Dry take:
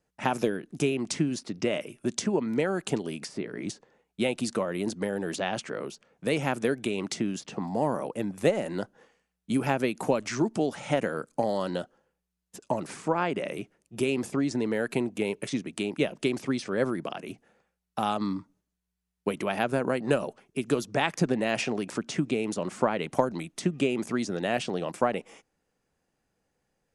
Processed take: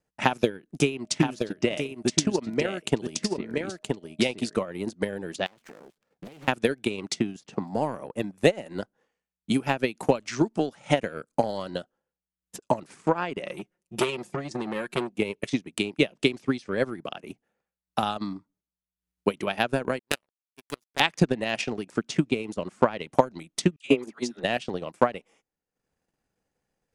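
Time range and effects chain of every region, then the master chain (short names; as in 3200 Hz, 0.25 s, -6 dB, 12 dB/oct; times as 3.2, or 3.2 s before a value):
0.99–4.55 echo 0.973 s -4 dB + whine 620 Hz -51 dBFS
5.46–6.48 switching dead time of 0.12 ms + compressor 20:1, threshold -39 dBFS + Doppler distortion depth 0.86 ms
13.44–15.16 comb 5.6 ms, depth 69% + core saturation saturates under 1000 Hz
19.99–21 HPF 250 Hz 6 dB/oct + high shelf 5500 Hz +12 dB + power-law curve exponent 3
23.76–24.44 HPF 210 Hz + dispersion lows, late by 91 ms, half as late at 900 Hz + three-band expander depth 100%
whole clip: transient shaper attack +9 dB, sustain -10 dB; dynamic EQ 3500 Hz, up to +6 dB, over -42 dBFS, Q 0.76; gain -3.5 dB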